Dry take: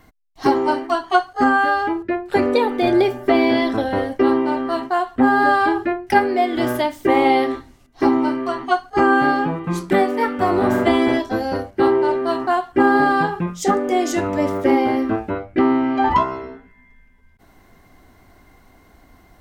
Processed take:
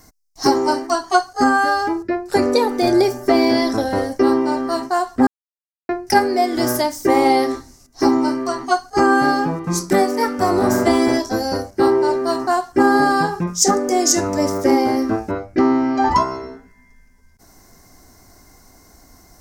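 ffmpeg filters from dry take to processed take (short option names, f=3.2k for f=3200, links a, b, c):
-filter_complex "[0:a]asplit=3[a][b][c];[a]atrim=end=5.27,asetpts=PTS-STARTPTS,afade=t=out:st=5.266:d=0.004:c=hsin[d];[b]atrim=start=5.27:end=5.89,asetpts=PTS-STARTPTS,volume=0[e];[c]atrim=start=5.89,asetpts=PTS-STARTPTS,afade=t=in:d=0.004:c=hsin[f];[d][e][f]concat=n=3:v=0:a=1,highshelf=f=4.2k:t=q:w=3:g=9.5,volume=1dB"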